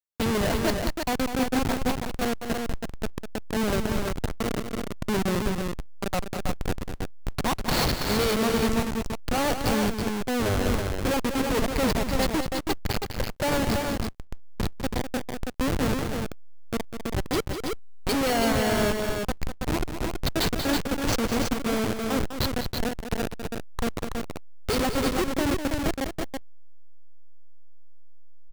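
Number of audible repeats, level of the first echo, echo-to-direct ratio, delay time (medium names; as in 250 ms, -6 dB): 2, -8.5 dB, -3.0 dB, 200 ms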